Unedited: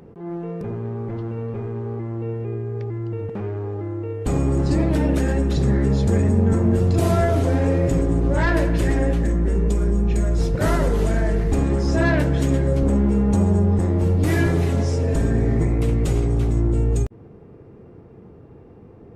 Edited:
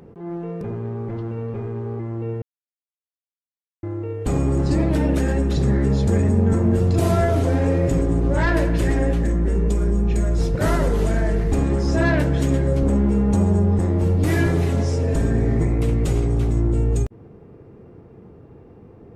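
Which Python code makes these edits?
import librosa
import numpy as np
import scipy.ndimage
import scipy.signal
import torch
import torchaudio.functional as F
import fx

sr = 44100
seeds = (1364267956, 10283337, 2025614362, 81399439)

y = fx.edit(x, sr, fx.silence(start_s=2.42, length_s=1.41), tone=tone)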